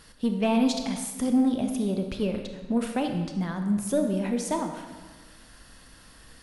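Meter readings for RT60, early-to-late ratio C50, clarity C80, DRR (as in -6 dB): 1.4 s, 6.0 dB, 7.5 dB, 4.5 dB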